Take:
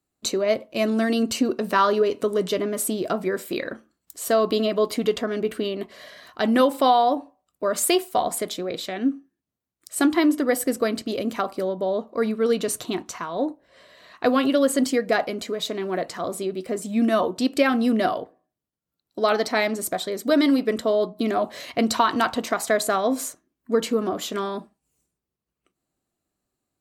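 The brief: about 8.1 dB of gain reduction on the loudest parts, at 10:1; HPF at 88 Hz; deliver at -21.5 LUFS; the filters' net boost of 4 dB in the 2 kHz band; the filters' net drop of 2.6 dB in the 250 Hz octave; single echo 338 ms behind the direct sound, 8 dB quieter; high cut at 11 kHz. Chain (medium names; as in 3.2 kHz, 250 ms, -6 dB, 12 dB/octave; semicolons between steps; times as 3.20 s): high-pass 88 Hz; low-pass 11 kHz; peaking EQ 250 Hz -3 dB; peaking EQ 2 kHz +5 dB; compression 10:1, threshold -22 dBFS; delay 338 ms -8 dB; trim +6.5 dB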